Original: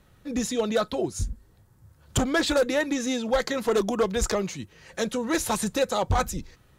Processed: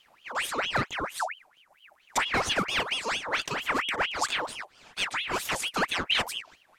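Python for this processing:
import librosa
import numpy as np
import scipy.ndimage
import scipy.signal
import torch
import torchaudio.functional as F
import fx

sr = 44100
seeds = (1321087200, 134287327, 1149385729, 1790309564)

y = fx.pitch_ramps(x, sr, semitones=-3.0, every_ms=864)
y = fx.ring_lfo(y, sr, carrier_hz=1900.0, swing_pct=65, hz=4.4)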